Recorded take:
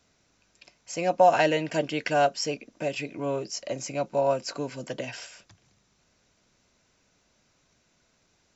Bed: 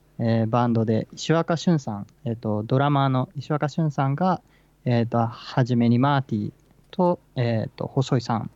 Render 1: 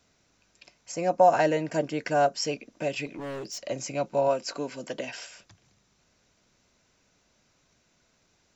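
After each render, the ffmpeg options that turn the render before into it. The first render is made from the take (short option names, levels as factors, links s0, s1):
-filter_complex "[0:a]asettb=1/sr,asplit=3[s0][s1][s2];[s0]atrim=end=0.924[s3];[s1]atrim=start=0.92:end=2.36,asetpts=PTS-STARTPTS,afade=t=in:d=0.004:c=qsin,afade=t=out:st=1.436:d=0.004:c=qsin,equalizer=f=3100:w=1.3:g=-9.5[s4];[s2]atrim=start=2.356[s5];[s3][s4]acrossfade=d=0.004:c1=hsin:c2=qsin[s6];[s6][s5]acrossfade=d=0.004:c1=qsin:c2=hsin,asplit=3[s7][s8][s9];[s7]afade=t=out:st=3.05:d=0.02[s10];[s8]asoftclip=type=hard:threshold=0.0211,afade=t=in:st=3.05:d=0.02,afade=t=out:st=3.58:d=0.02[s11];[s9]afade=t=in:st=3.58:d=0.02[s12];[s10][s11][s12]amix=inputs=3:normalize=0,asettb=1/sr,asplit=3[s13][s14][s15];[s13]atrim=end=4.284[s16];[s14]atrim=start=4.28:end=5.27,asetpts=PTS-STARTPTS,afade=t=in:d=0.004:c=qsin,afade=t=out:st=0.986:d=0.004:c=qsin,equalizer=f=110:t=o:w=0.58:g=-14.5[s17];[s15]atrim=start=5.266[s18];[s16][s17]acrossfade=d=0.004:c1=hsin:c2=qsin[s19];[s19][s18]acrossfade=d=0.004:c1=qsin:c2=hsin"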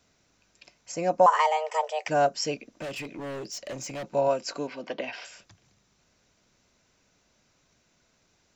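-filter_complex "[0:a]asettb=1/sr,asplit=3[s0][s1][s2];[s0]atrim=end=1.264[s3];[s1]atrim=start=1.26:end=2.08,asetpts=PTS-STARTPTS,afade=t=in:d=0.004:c=qsin,afade=t=out:st=0.816:d=0.004:c=qsin,afreqshift=310[s4];[s2]atrim=start=2.076[s5];[s3][s4]acrossfade=d=0.004:c1=hsin:c2=qsin[s6];[s6][s5]acrossfade=d=0.004:c1=qsin:c2=hsin,asettb=1/sr,asplit=3[s7][s8][s9];[s7]atrim=end=2.694[s10];[s8]atrim=start=2.69:end=4.15,asetpts=PTS-STARTPTS,afade=t=in:d=0.004:c=qsin,afade=t=out:st=1.456:d=0.004:c=qsin,asoftclip=type=hard:threshold=0.0237[s11];[s9]atrim=start=4.146[s12];[s10][s11]acrossfade=d=0.004:c1=hsin:c2=qsin[s13];[s13][s12]acrossfade=d=0.004:c1=qsin:c2=hsin,asettb=1/sr,asplit=3[s14][s15][s16];[s14]atrim=end=4.674[s17];[s15]atrim=start=4.67:end=5.25,asetpts=PTS-STARTPTS,afade=t=in:d=0.004:c=qsin,afade=t=out:st=0.576:d=0.004:c=qsin,highpass=110,equalizer=f=140:t=q:w=4:g=-9,equalizer=f=770:t=q:w=4:g=5,equalizer=f=1100:t=q:w=4:g=5,equalizer=f=2300:t=q:w=4:g=4,lowpass=f=4600:w=0.5412,lowpass=f=4600:w=1.3066[s18];[s16]atrim=start=5.246[s19];[s17][s18]acrossfade=d=0.004:c1=hsin:c2=qsin[s20];[s20][s19]acrossfade=d=0.004:c1=qsin:c2=hsin"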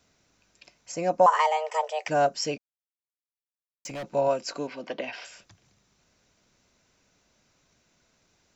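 -filter_complex "[0:a]asplit=3[s0][s1][s2];[s0]atrim=end=2.58,asetpts=PTS-STARTPTS,afade=t=out:st=2.576:d=0.004:c=hsin[s3];[s1]atrim=start=2.58:end=3.85,asetpts=PTS-STARTPTS,volume=0[s4];[s2]atrim=start=3.85,asetpts=PTS-STARTPTS,afade=t=in:d=0.004:c=hsin[s5];[s3][s4][s5]concat=n=3:v=0:a=1"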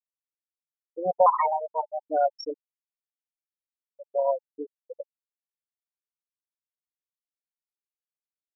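-af "afftfilt=real='re*gte(hypot(re,im),0.2)':imag='im*gte(hypot(re,im),0.2)':win_size=1024:overlap=0.75,bandreject=f=870:w=23"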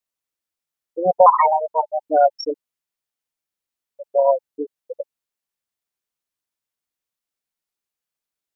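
-af "volume=2.66,alimiter=limit=0.794:level=0:latency=1"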